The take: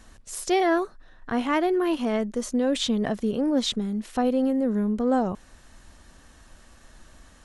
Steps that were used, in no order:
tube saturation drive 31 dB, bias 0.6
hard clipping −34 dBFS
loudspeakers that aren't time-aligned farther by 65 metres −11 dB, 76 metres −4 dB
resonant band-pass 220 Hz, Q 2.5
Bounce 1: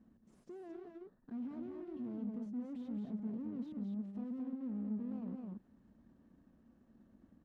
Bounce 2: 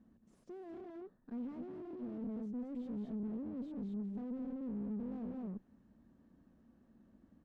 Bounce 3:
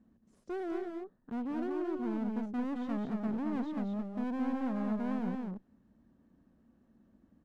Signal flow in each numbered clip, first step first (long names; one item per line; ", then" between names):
hard clipping, then loudspeakers that aren't time-aligned, then tube saturation, then resonant band-pass
loudspeakers that aren't time-aligned, then hard clipping, then resonant band-pass, then tube saturation
resonant band-pass, then tube saturation, then hard clipping, then loudspeakers that aren't time-aligned